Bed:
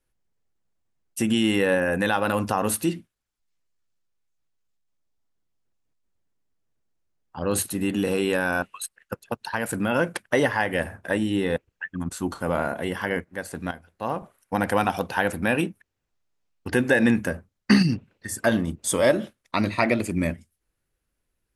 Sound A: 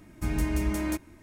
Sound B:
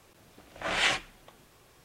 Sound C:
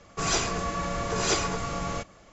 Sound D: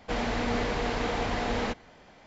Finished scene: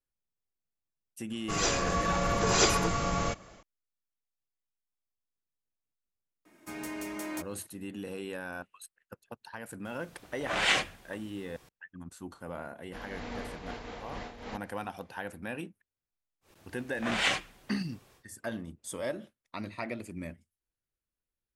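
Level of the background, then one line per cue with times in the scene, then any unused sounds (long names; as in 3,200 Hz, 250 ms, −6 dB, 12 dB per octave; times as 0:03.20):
bed −15.5 dB
0:01.31: mix in C −4.5 dB + automatic gain control gain up to 6 dB
0:06.45: mix in A −3.5 dB + high-pass filter 360 Hz
0:09.85: mix in B
0:12.84: mix in D −9 dB + amplitude modulation by smooth noise
0:16.41: mix in B −2 dB, fades 0.10 s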